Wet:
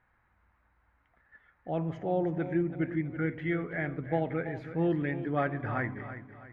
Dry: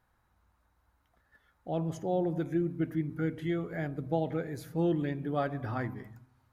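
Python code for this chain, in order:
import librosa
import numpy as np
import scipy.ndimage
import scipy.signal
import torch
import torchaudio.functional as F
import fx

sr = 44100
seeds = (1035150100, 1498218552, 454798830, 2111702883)

y = fx.lowpass_res(x, sr, hz=2100.0, q=2.7)
y = fx.echo_feedback(y, sr, ms=328, feedback_pct=40, wet_db=-12)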